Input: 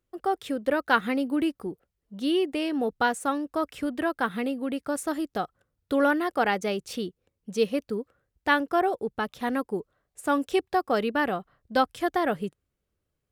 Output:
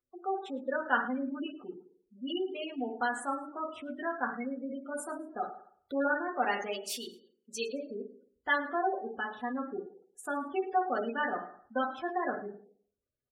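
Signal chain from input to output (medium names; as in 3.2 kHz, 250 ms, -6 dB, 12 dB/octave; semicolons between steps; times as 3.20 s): 6.71–7.73 s: tilt EQ +3 dB/octave; reverberation RT60 0.60 s, pre-delay 4 ms, DRR -1 dB; spectral gate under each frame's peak -20 dB strong; bass shelf 410 Hz -11 dB; frequency-shifting echo 108 ms, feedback 33%, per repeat +42 Hz, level -22 dB; trim -7 dB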